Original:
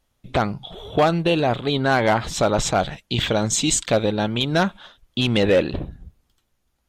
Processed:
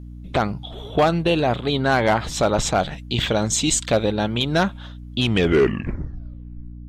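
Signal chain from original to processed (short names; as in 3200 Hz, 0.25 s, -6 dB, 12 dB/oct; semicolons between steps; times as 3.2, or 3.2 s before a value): tape stop at the end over 1.68 s; hum 60 Hz, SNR 15 dB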